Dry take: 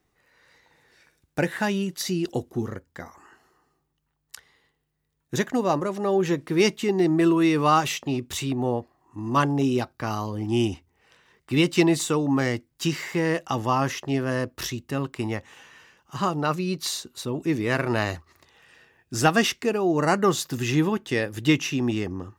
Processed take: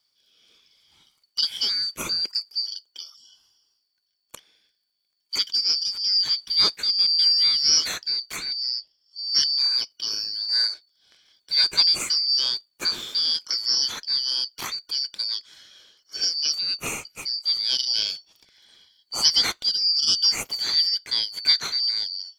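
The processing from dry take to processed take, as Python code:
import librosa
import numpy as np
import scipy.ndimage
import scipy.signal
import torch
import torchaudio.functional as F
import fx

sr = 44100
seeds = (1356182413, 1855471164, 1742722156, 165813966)

y = fx.band_shuffle(x, sr, order='4321')
y = fx.high_shelf(y, sr, hz=4900.0, db=-6.0, at=(8.36, 9.19))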